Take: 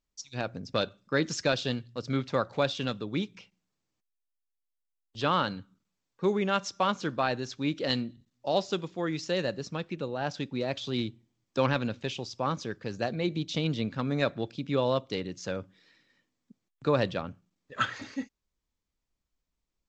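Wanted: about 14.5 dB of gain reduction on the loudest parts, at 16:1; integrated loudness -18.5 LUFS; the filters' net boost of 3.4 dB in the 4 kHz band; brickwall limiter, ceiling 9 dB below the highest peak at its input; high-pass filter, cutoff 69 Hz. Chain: high-pass 69 Hz; peaking EQ 4 kHz +4 dB; compression 16:1, threshold -35 dBFS; trim +24.5 dB; peak limiter -6 dBFS

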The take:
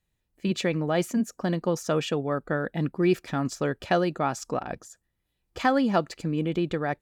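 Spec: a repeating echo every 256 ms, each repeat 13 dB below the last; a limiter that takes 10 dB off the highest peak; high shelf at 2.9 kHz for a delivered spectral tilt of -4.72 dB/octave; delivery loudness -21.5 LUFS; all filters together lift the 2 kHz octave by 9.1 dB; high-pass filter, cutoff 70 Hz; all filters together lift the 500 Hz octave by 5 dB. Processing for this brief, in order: high-pass 70 Hz; peaking EQ 500 Hz +5.5 dB; peaking EQ 2 kHz +9 dB; treble shelf 2.9 kHz +6.5 dB; peak limiter -13.5 dBFS; feedback delay 256 ms, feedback 22%, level -13 dB; trim +3.5 dB

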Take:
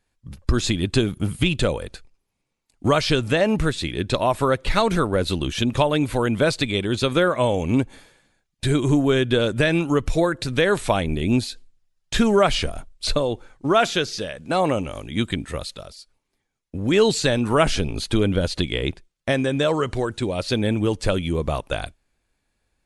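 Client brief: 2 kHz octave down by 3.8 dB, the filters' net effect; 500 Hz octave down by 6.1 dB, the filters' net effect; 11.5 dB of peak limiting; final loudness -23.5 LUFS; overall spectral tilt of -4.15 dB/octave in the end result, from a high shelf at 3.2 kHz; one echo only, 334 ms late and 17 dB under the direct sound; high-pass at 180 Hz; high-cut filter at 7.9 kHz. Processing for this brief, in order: high-pass 180 Hz; low-pass 7.9 kHz; peaking EQ 500 Hz -7.5 dB; peaking EQ 2 kHz -6.5 dB; treble shelf 3.2 kHz +4.5 dB; peak limiter -17.5 dBFS; delay 334 ms -17 dB; trim +5 dB

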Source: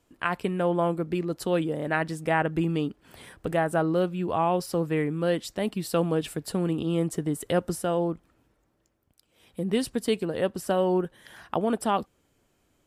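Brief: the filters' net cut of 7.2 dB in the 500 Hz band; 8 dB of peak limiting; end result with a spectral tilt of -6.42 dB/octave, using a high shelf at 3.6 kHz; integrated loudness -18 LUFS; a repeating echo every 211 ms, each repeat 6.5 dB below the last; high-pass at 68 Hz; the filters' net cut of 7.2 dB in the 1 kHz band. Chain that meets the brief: high-pass 68 Hz; peaking EQ 500 Hz -7.5 dB; peaking EQ 1 kHz -6 dB; treble shelf 3.6 kHz -7.5 dB; peak limiter -23 dBFS; feedback delay 211 ms, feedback 47%, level -6.5 dB; trim +14.5 dB

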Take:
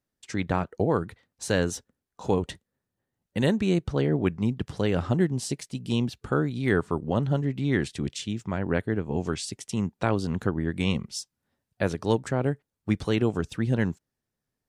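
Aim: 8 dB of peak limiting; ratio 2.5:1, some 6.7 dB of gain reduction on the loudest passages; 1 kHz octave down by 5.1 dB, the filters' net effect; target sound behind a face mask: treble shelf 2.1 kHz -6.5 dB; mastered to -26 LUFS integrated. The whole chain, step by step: peaking EQ 1 kHz -5.5 dB; compression 2.5:1, threshold -29 dBFS; peak limiter -23 dBFS; treble shelf 2.1 kHz -6.5 dB; trim +10 dB

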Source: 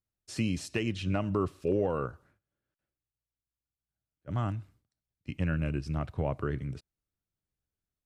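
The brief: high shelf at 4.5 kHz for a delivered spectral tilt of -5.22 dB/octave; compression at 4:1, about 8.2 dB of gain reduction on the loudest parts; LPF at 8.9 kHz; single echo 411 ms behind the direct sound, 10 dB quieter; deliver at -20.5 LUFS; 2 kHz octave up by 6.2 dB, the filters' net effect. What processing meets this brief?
low-pass 8.9 kHz; peaking EQ 2 kHz +6.5 dB; treble shelf 4.5 kHz +8.5 dB; compression 4:1, threshold -33 dBFS; delay 411 ms -10 dB; trim +18 dB

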